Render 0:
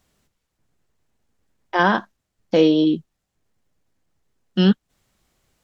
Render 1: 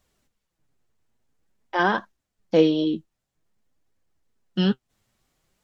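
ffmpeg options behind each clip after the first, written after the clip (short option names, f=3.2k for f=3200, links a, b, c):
-af "flanger=delay=1.6:depth=8:regen=52:speed=0.5:shape=triangular"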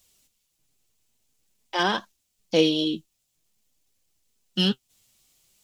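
-af "aexciter=amount=2.1:drive=9.4:freq=2.4k,volume=-3dB"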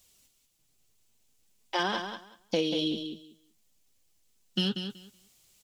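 -af "acompressor=threshold=-25dB:ratio=6,aecho=1:1:188|376|564:0.398|0.0677|0.0115"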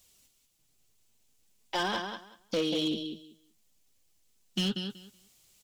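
-af "asoftclip=type=hard:threshold=-24dB"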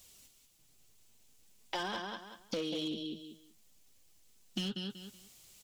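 -af "acompressor=threshold=-43dB:ratio=3,volume=4.5dB"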